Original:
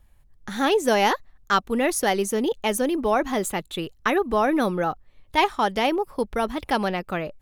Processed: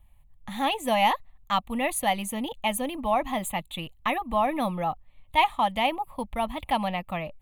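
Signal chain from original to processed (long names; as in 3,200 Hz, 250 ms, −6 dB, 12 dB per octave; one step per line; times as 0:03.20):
phaser with its sweep stopped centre 1,500 Hz, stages 6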